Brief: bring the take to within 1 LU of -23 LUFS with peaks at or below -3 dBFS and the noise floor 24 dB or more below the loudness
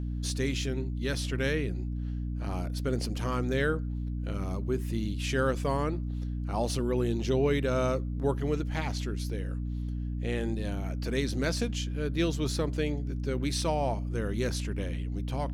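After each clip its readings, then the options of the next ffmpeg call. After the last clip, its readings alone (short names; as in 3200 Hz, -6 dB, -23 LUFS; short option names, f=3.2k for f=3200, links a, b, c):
hum 60 Hz; harmonics up to 300 Hz; hum level -31 dBFS; loudness -31.0 LUFS; peak -14.5 dBFS; loudness target -23.0 LUFS
-> -af "bandreject=f=60:t=h:w=6,bandreject=f=120:t=h:w=6,bandreject=f=180:t=h:w=6,bandreject=f=240:t=h:w=6,bandreject=f=300:t=h:w=6"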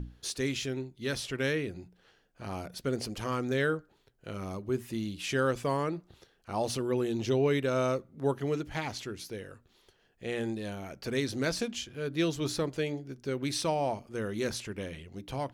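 hum none; loudness -33.0 LUFS; peak -16.5 dBFS; loudness target -23.0 LUFS
-> -af "volume=10dB"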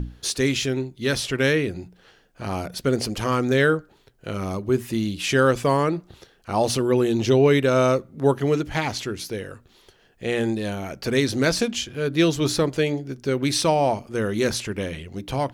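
loudness -23.0 LUFS; peak -6.5 dBFS; noise floor -58 dBFS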